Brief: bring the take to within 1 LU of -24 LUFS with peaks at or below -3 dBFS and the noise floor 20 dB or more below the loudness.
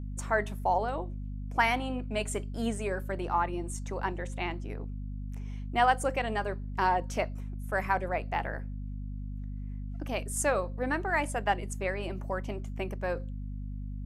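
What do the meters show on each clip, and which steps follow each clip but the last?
hum 50 Hz; harmonics up to 250 Hz; hum level -35 dBFS; loudness -32.5 LUFS; peak -12.0 dBFS; loudness target -24.0 LUFS
-> de-hum 50 Hz, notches 5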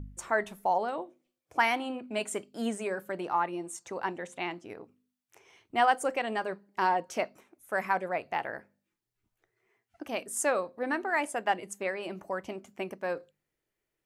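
hum none; loudness -32.0 LUFS; peak -12.0 dBFS; loudness target -24.0 LUFS
-> gain +8 dB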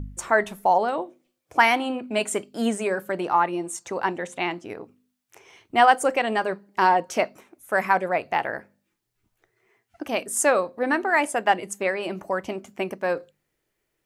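loudness -24.0 LUFS; peak -4.0 dBFS; noise floor -78 dBFS

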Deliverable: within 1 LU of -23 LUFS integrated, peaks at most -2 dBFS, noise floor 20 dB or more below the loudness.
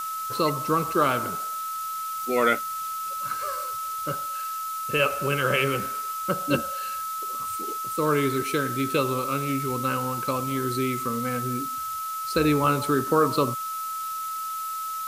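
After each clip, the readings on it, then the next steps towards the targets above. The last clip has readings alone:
steady tone 1300 Hz; tone level -29 dBFS; noise floor -32 dBFS; noise floor target -46 dBFS; loudness -26.0 LUFS; peak -8.5 dBFS; loudness target -23.0 LUFS
-> notch 1300 Hz, Q 30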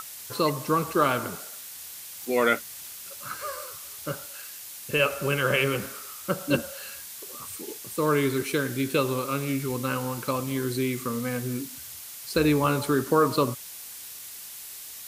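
steady tone none; noise floor -42 dBFS; noise floor target -48 dBFS
-> noise print and reduce 6 dB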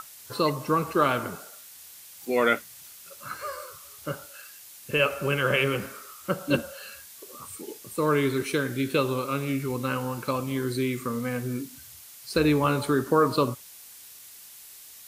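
noise floor -47 dBFS; loudness -26.5 LUFS; peak -9.0 dBFS; loudness target -23.0 LUFS
-> gain +3.5 dB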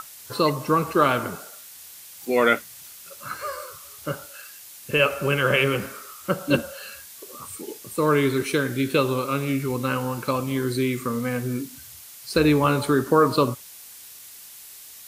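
loudness -23.0 LUFS; peak -5.5 dBFS; noise floor -44 dBFS

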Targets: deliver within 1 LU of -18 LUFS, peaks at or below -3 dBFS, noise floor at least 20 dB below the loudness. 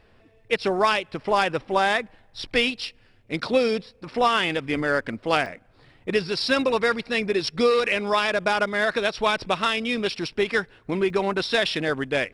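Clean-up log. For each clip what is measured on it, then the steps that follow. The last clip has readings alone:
dropouts 2; longest dropout 2.6 ms; loudness -23.5 LUFS; peak -6.5 dBFS; loudness target -18.0 LUFS
-> interpolate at 5.46/11.1, 2.6 ms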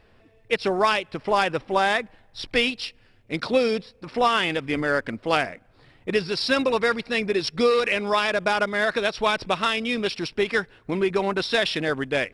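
dropouts 0; loudness -23.5 LUFS; peak -6.5 dBFS; loudness target -18.0 LUFS
-> gain +5.5 dB; limiter -3 dBFS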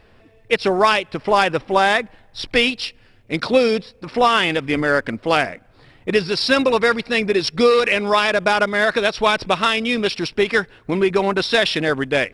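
loudness -18.0 LUFS; peak -3.0 dBFS; noise floor -51 dBFS

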